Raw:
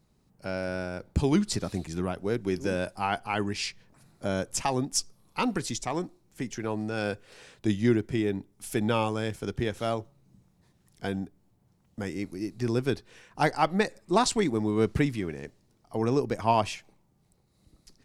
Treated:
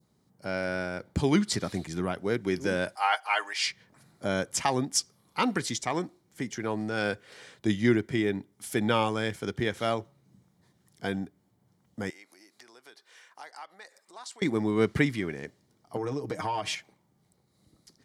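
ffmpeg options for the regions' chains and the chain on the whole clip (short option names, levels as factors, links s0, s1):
-filter_complex "[0:a]asettb=1/sr,asplit=3[s0][s1][s2];[s0]atrim=end=2.954[s3];[s1]atrim=start=2.95:end=3.67,asetpts=PTS-STARTPTS,afade=t=in:d=0.004:c=qsin,afade=t=out:st=0.716:d=0.004:c=qsin,highpass=f=610:w=0.5412,highpass=f=610:w=1.3066,aecho=1:1:6.5:0.67,atrim=end_sample=31752[s4];[s2]atrim=start=3.666[s5];[s3][s4]acrossfade=d=0.004:c1=hsin:c2=qsin[s6];[s6][s5]acrossfade=d=0.004:c1=qsin:c2=hsin,asettb=1/sr,asplit=3[s7][s8][s9];[s7]atrim=end=12.104[s10];[s8]atrim=start=12.1:end=14.42,asetpts=PTS-STARTPTS,afade=t=in:d=0.004:c=qsin,afade=t=out:st=2.316:d=0.004:c=qsin,acompressor=threshold=0.01:ratio=4:attack=3.2:release=140:knee=1:detection=peak,highpass=840[s11];[s9]atrim=start=14.416[s12];[s10][s11]acrossfade=d=0.004:c1=hsin:c2=qsin[s13];[s13][s12]acrossfade=d=0.004:c1=qsin:c2=hsin,asettb=1/sr,asplit=3[s14][s15][s16];[s14]atrim=end=15.964[s17];[s15]atrim=start=15.96:end=16.75,asetpts=PTS-STARTPTS,afade=t=in:d=0.004:c=qsin,afade=t=out:st=0.786:d=0.004:c=qsin,aecho=1:1:6.5:0.81,atrim=end_sample=34839,acompressor=threshold=0.0447:ratio=16:attack=3.2:release=140:knee=1:detection=peak[s18];[s16]atrim=start=16.746[s19];[s17][s18]acrossfade=d=0.004:c1=hsin:c2=qsin[s20];[s20][s19]acrossfade=d=0.004:c1=qsin:c2=hsin,highpass=99,bandreject=f=2600:w=7.2,adynamicequalizer=threshold=0.00562:dfrequency=2200:dqfactor=0.9:tfrequency=2200:tqfactor=0.9:attack=5:release=100:ratio=0.375:range=3.5:mode=boostabove:tftype=bell"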